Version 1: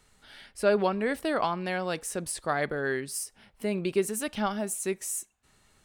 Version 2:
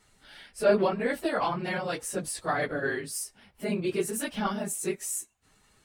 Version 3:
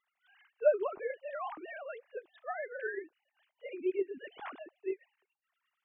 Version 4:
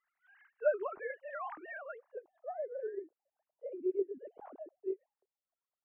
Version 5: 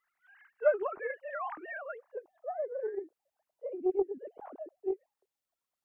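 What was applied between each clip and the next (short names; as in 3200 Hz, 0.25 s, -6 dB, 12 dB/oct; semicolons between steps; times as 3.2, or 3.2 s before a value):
phase scrambler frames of 50 ms
sine-wave speech; gain -7.5 dB
low-pass sweep 1700 Hz -> 580 Hz, 1.71–2.49; gain -5 dB
Doppler distortion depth 0.13 ms; gain +4 dB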